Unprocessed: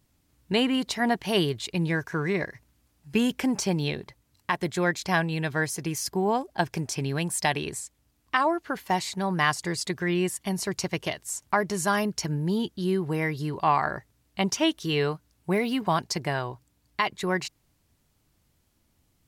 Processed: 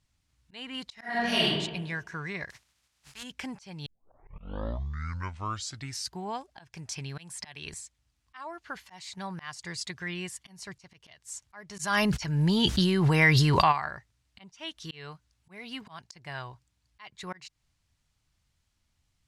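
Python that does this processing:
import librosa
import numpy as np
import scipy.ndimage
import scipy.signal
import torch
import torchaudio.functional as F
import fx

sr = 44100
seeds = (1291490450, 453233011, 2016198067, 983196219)

y = fx.reverb_throw(x, sr, start_s=0.94, length_s=0.51, rt60_s=1.1, drr_db=-8.5)
y = fx.spec_flatten(y, sr, power=0.39, at=(2.49, 3.22), fade=0.02)
y = fx.band_squash(y, sr, depth_pct=100, at=(7.18, 7.74))
y = fx.env_flatten(y, sr, amount_pct=100, at=(11.78, 13.71), fade=0.02)
y = fx.edit(y, sr, fx.tape_start(start_s=3.86, length_s=2.37), tone=tone)
y = scipy.signal.sosfilt(scipy.signal.butter(2, 7500.0, 'lowpass', fs=sr, output='sos'), y)
y = fx.peak_eq(y, sr, hz=350.0, db=-13.0, octaves=2.3)
y = fx.auto_swell(y, sr, attack_ms=304.0)
y = y * 10.0 ** (-2.5 / 20.0)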